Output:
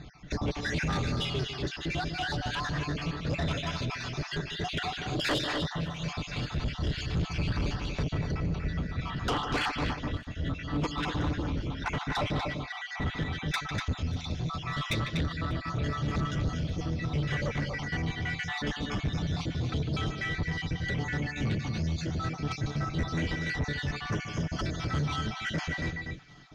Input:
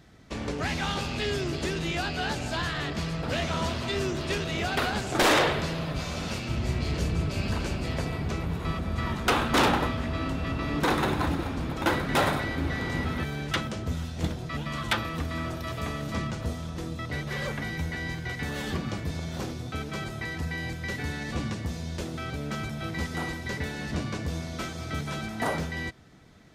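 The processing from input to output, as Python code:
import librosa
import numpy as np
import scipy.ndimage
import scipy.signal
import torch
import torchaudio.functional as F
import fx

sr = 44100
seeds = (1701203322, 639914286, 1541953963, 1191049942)

p1 = fx.spec_dropout(x, sr, seeds[0], share_pct=60)
p2 = scipy.signal.sosfilt(scipy.signal.cheby1(6, 1.0, 6700.0, 'lowpass', fs=sr, output='sos'), p1)
p3 = fx.peak_eq(p2, sr, hz=3300.0, db=5.0, octaves=0.5)
p4 = p3 + fx.echo_multitap(p3, sr, ms=(150, 243, 266), db=(-13.0, -7.5, -16.5), dry=0)
p5 = fx.rider(p4, sr, range_db=10, speed_s=2.0)
p6 = fx.low_shelf(p5, sr, hz=160.0, db=9.0)
p7 = p6 + 0.33 * np.pad(p6, (int(6.8 * sr / 1000.0), 0))[:len(p6)]
p8 = 10.0 ** (-24.0 / 20.0) * np.tanh(p7 / 10.0 ** (-24.0 / 20.0))
y = fx.echo_wet_highpass(p8, sr, ms=591, feedback_pct=71, hz=1600.0, wet_db=-24)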